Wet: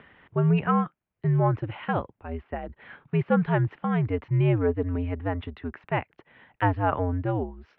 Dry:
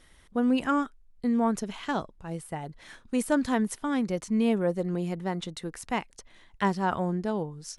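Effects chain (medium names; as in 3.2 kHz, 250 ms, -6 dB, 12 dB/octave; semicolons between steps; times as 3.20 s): upward compressor, threshold -44 dBFS; mistuned SSB -89 Hz 160–2800 Hz; trim +3 dB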